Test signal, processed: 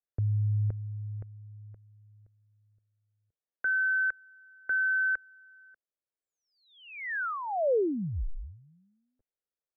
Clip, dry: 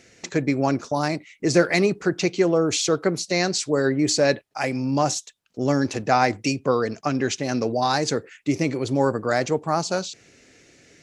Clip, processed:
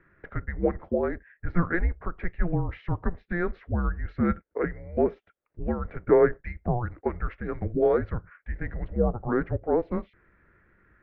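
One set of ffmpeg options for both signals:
ffmpeg -i in.wav -af "highpass=frequency=420:width_type=q:width=0.5412,highpass=frequency=420:width_type=q:width=1.307,lowpass=frequency=2000:width_type=q:width=0.5176,lowpass=frequency=2000:width_type=q:width=0.7071,lowpass=frequency=2000:width_type=q:width=1.932,afreqshift=-350,equalizer=frequency=125:width_type=o:width=1:gain=-7,equalizer=frequency=250:width_type=o:width=1:gain=-6,equalizer=frequency=500:width_type=o:width=1:gain=5,equalizer=frequency=1000:width_type=o:width=1:gain=-12,volume=2.5dB" out.wav

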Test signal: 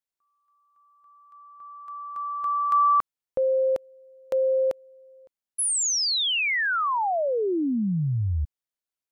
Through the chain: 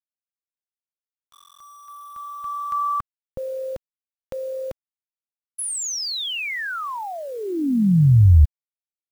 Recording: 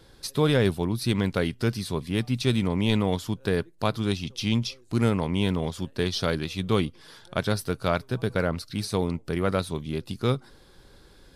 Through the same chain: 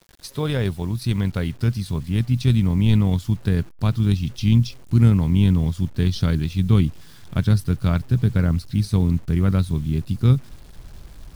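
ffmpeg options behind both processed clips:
ffmpeg -i in.wav -af "tremolo=f=44:d=0.261,asubboost=boost=8.5:cutoff=180,acrusher=bits=7:mix=0:aa=0.000001,volume=-1.5dB" out.wav

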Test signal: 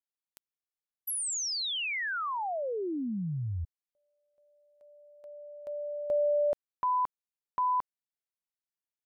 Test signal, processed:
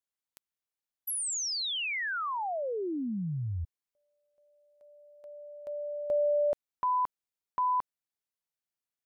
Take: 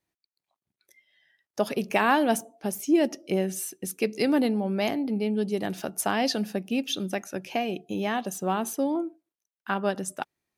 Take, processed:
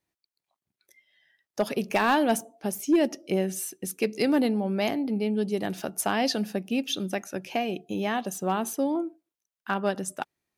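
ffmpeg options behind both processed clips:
ffmpeg -i in.wav -af "asoftclip=type=hard:threshold=-15dB" out.wav

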